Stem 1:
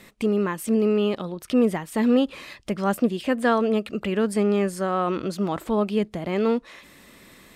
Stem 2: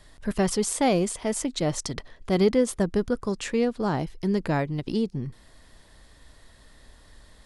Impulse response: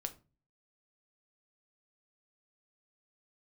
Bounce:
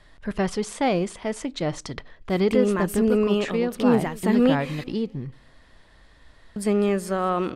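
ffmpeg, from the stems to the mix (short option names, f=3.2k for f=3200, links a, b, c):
-filter_complex "[0:a]adelay=2300,volume=0dB,asplit=3[a][b][c];[a]atrim=end=4.84,asetpts=PTS-STARTPTS,afade=t=out:st=4.836:d=0.004:c=hsin[d];[b]atrim=start=4.84:end=6.56,asetpts=PTS-STARTPTS,volume=0[e];[c]atrim=start=6.56,asetpts=PTS-STARTPTS,afade=t=in:d=0.004:c=hsin[f];[d][e][f]concat=n=3:v=0:a=1,asplit=2[g][h];[h]volume=-21dB[i];[1:a]lowpass=f=2.8k:p=1,equalizer=f=2.2k:w=0.48:g=5,volume=-3dB,asplit=2[j][k];[k]volume=-11dB[l];[2:a]atrim=start_sample=2205[m];[l][m]afir=irnorm=-1:irlink=0[n];[i]aecho=0:1:204|408|612|816|1020|1224:1|0.43|0.185|0.0795|0.0342|0.0147[o];[g][j][n][o]amix=inputs=4:normalize=0"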